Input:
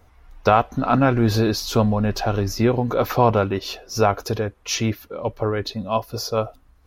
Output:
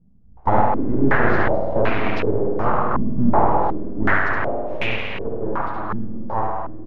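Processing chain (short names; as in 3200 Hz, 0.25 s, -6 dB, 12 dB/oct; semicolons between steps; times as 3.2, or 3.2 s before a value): 4.23–4.83 comb 3.3 ms, depth 60%; spring tank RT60 2.8 s, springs 51 ms, chirp 65 ms, DRR -0.5 dB; full-wave rectifier; on a send: echo 71 ms -3.5 dB; on the sum: stepped low-pass 2.7 Hz 210–2400 Hz; gain -3.5 dB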